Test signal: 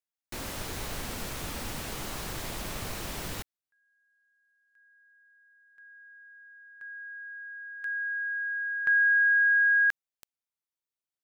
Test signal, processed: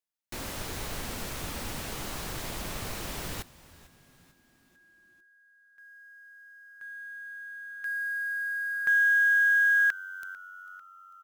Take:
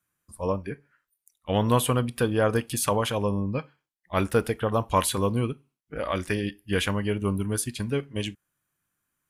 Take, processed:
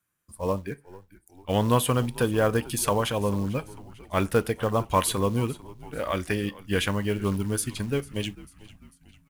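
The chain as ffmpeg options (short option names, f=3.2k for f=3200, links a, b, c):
-filter_complex "[0:a]acrusher=bits=6:mode=log:mix=0:aa=0.000001,asplit=5[a][b][c][d][e];[b]adelay=446,afreqshift=-93,volume=-19.5dB[f];[c]adelay=892,afreqshift=-186,volume=-25.2dB[g];[d]adelay=1338,afreqshift=-279,volume=-30.9dB[h];[e]adelay=1784,afreqshift=-372,volume=-36.5dB[i];[a][f][g][h][i]amix=inputs=5:normalize=0"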